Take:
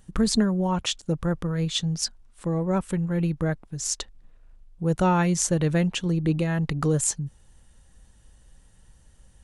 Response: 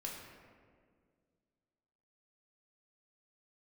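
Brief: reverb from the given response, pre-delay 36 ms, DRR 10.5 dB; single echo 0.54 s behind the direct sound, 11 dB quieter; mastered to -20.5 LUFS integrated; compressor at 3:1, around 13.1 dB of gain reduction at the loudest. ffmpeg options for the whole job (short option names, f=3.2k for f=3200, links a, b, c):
-filter_complex "[0:a]acompressor=threshold=-36dB:ratio=3,aecho=1:1:540:0.282,asplit=2[a][b];[1:a]atrim=start_sample=2205,adelay=36[c];[b][c]afir=irnorm=-1:irlink=0,volume=-9.5dB[d];[a][d]amix=inputs=2:normalize=0,volume=15dB"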